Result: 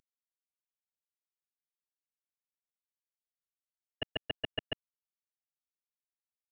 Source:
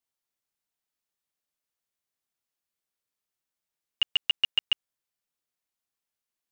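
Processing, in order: CVSD 16 kbps; gain +4.5 dB

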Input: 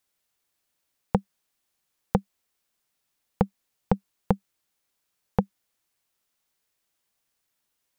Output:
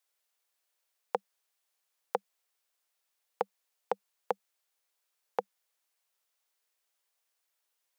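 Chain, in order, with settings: HPF 430 Hz 24 dB/oct; gain -3 dB

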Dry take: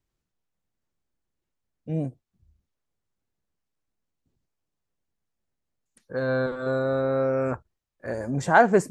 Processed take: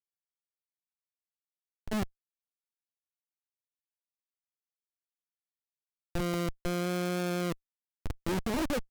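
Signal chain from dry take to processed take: low-pass sweep 870 Hz -> 330 Hz, 1.29–3.83; Schmitt trigger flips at -23.5 dBFS; pitch shift +5 st

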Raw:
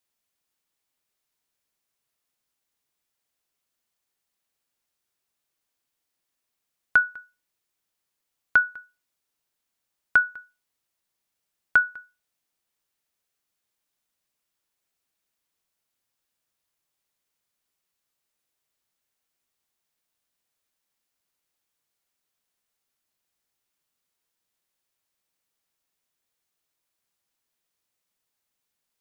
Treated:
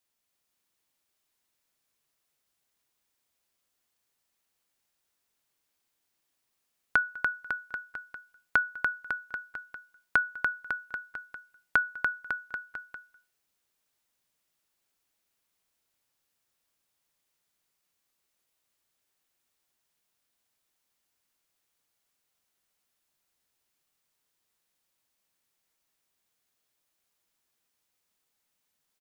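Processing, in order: compressor 3:1, threshold -23 dBFS, peak gain reduction 7.5 dB; bouncing-ball echo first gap 0.29 s, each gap 0.9×, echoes 5

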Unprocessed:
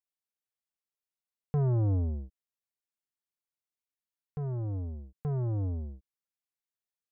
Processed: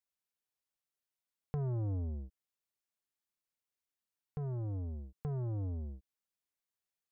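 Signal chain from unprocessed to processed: compressor 2.5:1, threshold -39 dBFS, peak gain reduction 8.5 dB

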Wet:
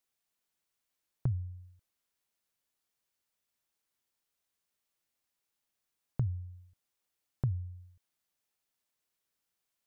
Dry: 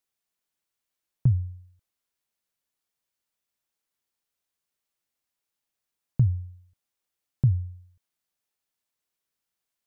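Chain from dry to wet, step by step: compressor 2:1, threshold -37 dBFS, peak gain reduction 11.5 dB

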